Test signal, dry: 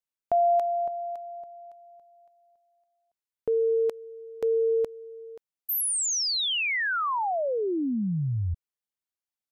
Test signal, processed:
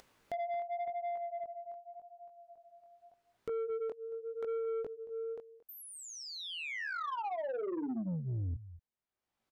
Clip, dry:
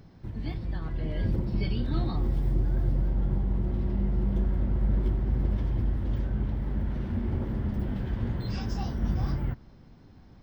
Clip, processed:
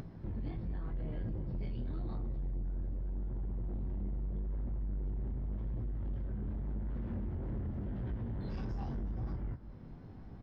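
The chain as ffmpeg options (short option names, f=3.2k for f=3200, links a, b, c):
-af "flanger=delay=17:depth=7.4:speed=0.86,acompressor=threshold=-35dB:ratio=8:attack=4.4:release=323:knee=6:detection=rms,lowpass=f=1.2k:p=1,aecho=1:1:226:0.119,acompressor=mode=upward:threshold=-53dB:ratio=2.5:attack=52:release=669:knee=2.83:detection=peak,asoftclip=type=tanh:threshold=-38.5dB,volume=6dB"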